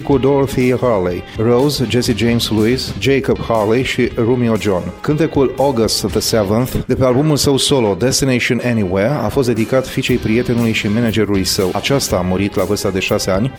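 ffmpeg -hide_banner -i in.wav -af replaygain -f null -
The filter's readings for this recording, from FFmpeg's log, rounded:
track_gain = -3.5 dB
track_peak = 0.563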